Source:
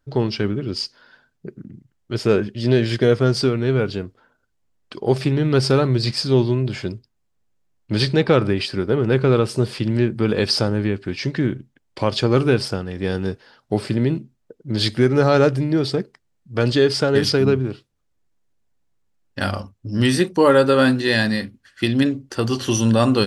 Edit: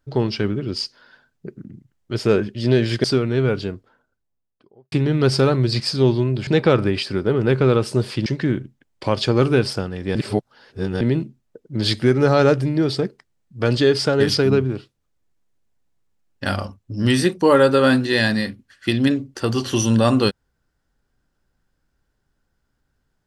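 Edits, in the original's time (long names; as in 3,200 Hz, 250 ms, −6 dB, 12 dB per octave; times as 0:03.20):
0:03.04–0:03.35: remove
0:03.90–0:05.23: fade out and dull
0:06.78–0:08.10: remove
0:09.89–0:11.21: remove
0:13.10–0:13.96: reverse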